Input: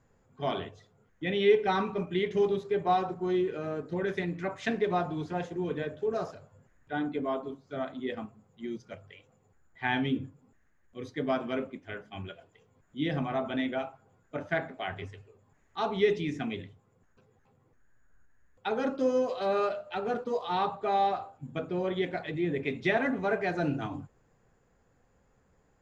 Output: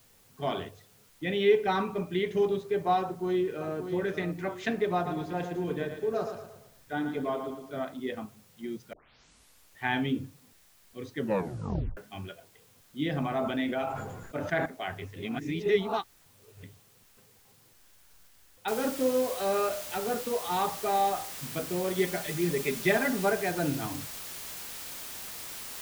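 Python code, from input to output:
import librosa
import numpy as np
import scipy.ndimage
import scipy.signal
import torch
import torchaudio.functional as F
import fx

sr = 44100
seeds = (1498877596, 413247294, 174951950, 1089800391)

y = fx.echo_throw(x, sr, start_s=3.02, length_s=0.71, ms=580, feedback_pct=35, wet_db=-8.0)
y = fx.echo_feedback(y, sr, ms=114, feedback_pct=43, wet_db=-8.0, at=(5.05, 7.79), fade=0.02)
y = fx.sustainer(y, sr, db_per_s=35.0, at=(13.18, 14.66))
y = fx.noise_floor_step(y, sr, seeds[0], at_s=18.68, before_db=-62, after_db=-41, tilt_db=0.0)
y = fx.comb(y, sr, ms=5.0, depth=0.57, at=(21.98, 23.3))
y = fx.edit(y, sr, fx.tape_start(start_s=8.93, length_s=0.91),
    fx.tape_stop(start_s=11.16, length_s=0.81),
    fx.reverse_span(start_s=15.16, length_s=1.47), tone=tone)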